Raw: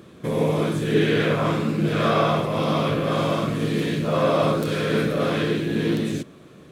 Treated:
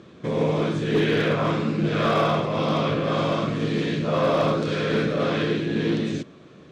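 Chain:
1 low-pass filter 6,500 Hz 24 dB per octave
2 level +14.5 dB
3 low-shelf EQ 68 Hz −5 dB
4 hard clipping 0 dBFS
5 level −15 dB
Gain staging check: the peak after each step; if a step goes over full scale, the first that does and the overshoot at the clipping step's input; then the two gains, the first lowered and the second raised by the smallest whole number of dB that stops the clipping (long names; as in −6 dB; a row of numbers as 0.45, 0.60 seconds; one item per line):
−7.5, +7.0, +6.5, 0.0, −15.0 dBFS
step 2, 6.5 dB
step 2 +7.5 dB, step 5 −8 dB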